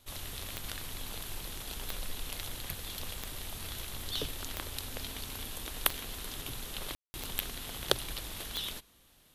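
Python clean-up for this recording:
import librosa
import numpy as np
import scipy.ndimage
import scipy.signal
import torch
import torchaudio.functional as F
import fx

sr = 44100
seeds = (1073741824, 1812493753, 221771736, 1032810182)

y = fx.fix_declick_ar(x, sr, threshold=10.0)
y = fx.fix_ambience(y, sr, seeds[0], print_start_s=8.83, print_end_s=9.33, start_s=6.95, end_s=7.14)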